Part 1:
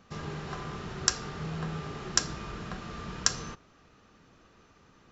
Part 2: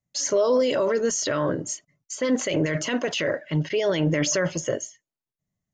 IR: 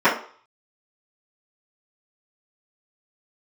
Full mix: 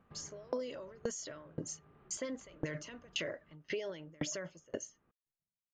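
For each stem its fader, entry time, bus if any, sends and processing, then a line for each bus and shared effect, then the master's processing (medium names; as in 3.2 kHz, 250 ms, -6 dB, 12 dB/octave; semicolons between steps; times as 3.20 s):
-7.5 dB, 0.00 s, no send, compression 6:1, threshold -41 dBFS, peak gain reduction 21 dB; Gaussian low-pass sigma 3.5 samples; auto duck -10 dB, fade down 0.55 s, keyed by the second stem
-3.5 dB, 0.00 s, no send, vibrato 0.98 Hz 37 cents; sawtooth tremolo in dB decaying 1.9 Hz, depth 37 dB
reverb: none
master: compression 6:1, threshold -34 dBFS, peak gain reduction 11 dB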